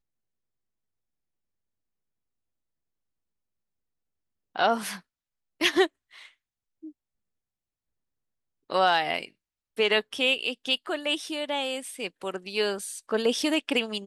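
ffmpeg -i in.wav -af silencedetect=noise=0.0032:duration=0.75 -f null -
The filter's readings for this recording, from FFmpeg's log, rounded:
silence_start: 0.00
silence_end: 4.55 | silence_duration: 4.55
silence_start: 6.91
silence_end: 8.70 | silence_duration: 1.79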